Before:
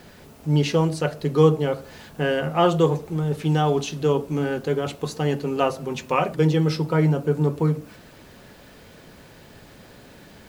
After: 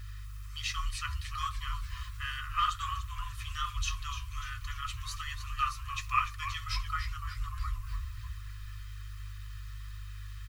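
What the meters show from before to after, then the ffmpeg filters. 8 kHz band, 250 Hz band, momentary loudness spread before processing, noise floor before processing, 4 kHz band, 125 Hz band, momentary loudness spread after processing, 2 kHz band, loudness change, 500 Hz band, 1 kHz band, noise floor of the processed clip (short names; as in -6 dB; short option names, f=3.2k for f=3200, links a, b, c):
-4.0 dB, under -40 dB, 8 LU, -48 dBFS, -4.5 dB, -17.0 dB, 14 LU, -6.0 dB, -14.5 dB, under -40 dB, -7.0 dB, -43 dBFS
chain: -filter_complex "[0:a]aecho=1:1:1.6:0.92,asplit=8[a][b][c][d][e][f][g][h];[b]adelay=294,afreqshift=-110,volume=-10.5dB[i];[c]adelay=588,afreqshift=-220,volume=-15.4dB[j];[d]adelay=882,afreqshift=-330,volume=-20.3dB[k];[e]adelay=1176,afreqshift=-440,volume=-25.1dB[l];[f]adelay=1470,afreqshift=-550,volume=-30dB[m];[g]adelay=1764,afreqshift=-660,volume=-34.9dB[n];[h]adelay=2058,afreqshift=-770,volume=-39.8dB[o];[a][i][j][k][l][m][n][o]amix=inputs=8:normalize=0,flanger=delay=1.8:depth=9.6:regen=-51:speed=1.3:shape=triangular,aeval=exprs='val(0)+0.0141*(sin(2*PI*50*n/s)+sin(2*PI*2*50*n/s)/2+sin(2*PI*3*50*n/s)/3+sin(2*PI*4*50*n/s)/4+sin(2*PI*5*50*n/s)/5)':c=same,asplit=2[p][q];[q]aeval=exprs='clip(val(0),-1,0.224)':c=same,volume=-5dB[r];[p][r]amix=inputs=2:normalize=0,afftfilt=real='re*(1-between(b*sr/4096,120,1000))':imag='im*(1-between(b*sr/4096,120,1000))':win_size=4096:overlap=0.75,volume=-7dB"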